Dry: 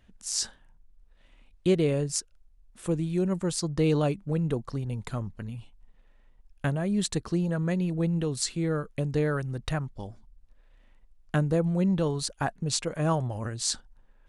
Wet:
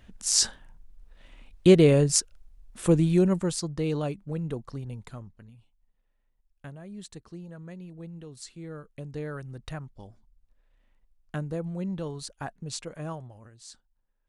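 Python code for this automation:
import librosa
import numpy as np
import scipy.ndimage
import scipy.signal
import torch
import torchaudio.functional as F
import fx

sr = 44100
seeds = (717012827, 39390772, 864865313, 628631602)

y = fx.gain(x, sr, db=fx.line((3.12, 7.0), (3.78, -4.5), (4.87, -4.5), (5.57, -15.0), (8.25, -15.0), (9.48, -7.5), (12.95, -7.5), (13.5, -18.5)))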